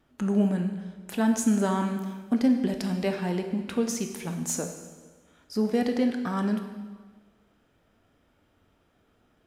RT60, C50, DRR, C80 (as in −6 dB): 1.4 s, 7.0 dB, 5.0 dB, 9.0 dB